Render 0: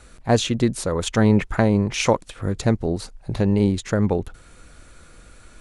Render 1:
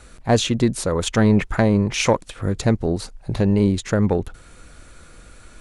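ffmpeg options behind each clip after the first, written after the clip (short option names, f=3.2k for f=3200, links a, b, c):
-af "acontrast=42,volume=-3.5dB"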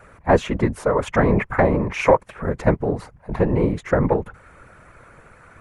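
-af "equalizer=f=125:t=o:w=1:g=7,equalizer=f=500:t=o:w=1:g=8,equalizer=f=1k:t=o:w=1:g=11,equalizer=f=2k:t=o:w=1:g=10,equalizer=f=4k:t=o:w=1:g=-9,equalizer=f=8k:t=o:w=1:g=-5,afftfilt=real='hypot(re,im)*cos(2*PI*random(0))':imag='hypot(re,im)*sin(2*PI*random(1))':win_size=512:overlap=0.75,volume=-1.5dB"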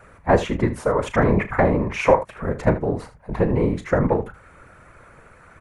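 -af "aecho=1:1:35|77:0.237|0.188,volume=-1dB"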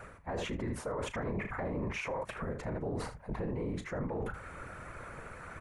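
-af "areverse,acompressor=threshold=-29dB:ratio=4,areverse,alimiter=level_in=6.5dB:limit=-24dB:level=0:latency=1:release=39,volume=-6.5dB,volume=2dB"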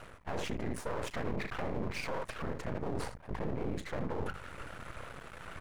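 -af "aeval=exprs='max(val(0),0)':c=same,volume=3.5dB"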